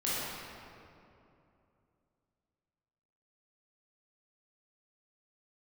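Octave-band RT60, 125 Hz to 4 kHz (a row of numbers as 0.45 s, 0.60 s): 3.4 s, 3.2 s, 2.9 s, 2.6 s, 2.1 s, 1.5 s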